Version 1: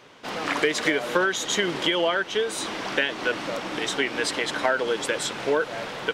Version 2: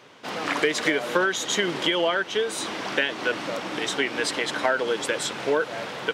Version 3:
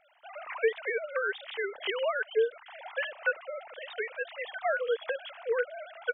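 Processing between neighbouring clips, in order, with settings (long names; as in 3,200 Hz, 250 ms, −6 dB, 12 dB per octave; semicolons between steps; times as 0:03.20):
high-pass filter 81 Hz
three sine waves on the formant tracks; level −7 dB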